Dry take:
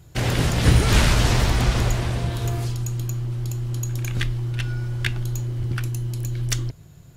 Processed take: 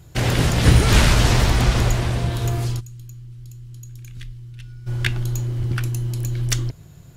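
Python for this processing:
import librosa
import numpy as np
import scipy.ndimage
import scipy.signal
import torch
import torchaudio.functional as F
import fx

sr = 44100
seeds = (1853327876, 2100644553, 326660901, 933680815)

y = fx.tone_stack(x, sr, knobs='6-0-2', at=(2.79, 4.86), fade=0.02)
y = y * librosa.db_to_amplitude(2.5)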